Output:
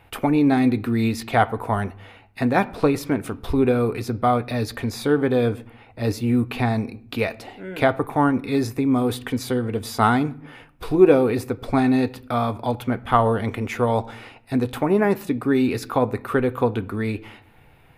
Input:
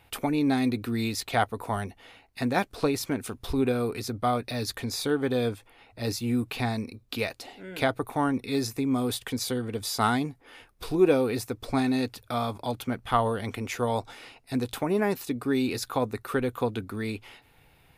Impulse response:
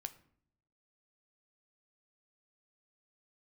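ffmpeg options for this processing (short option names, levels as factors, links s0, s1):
-filter_complex "[0:a]asplit=2[s0][s1];[1:a]atrim=start_sample=2205,lowpass=2900[s2];[s1][s2]afir=irnorm=-1:irlink=0,volume=2.24[s3];[s0][s3]amix=inputs=2:normalize=0,volume=0.891"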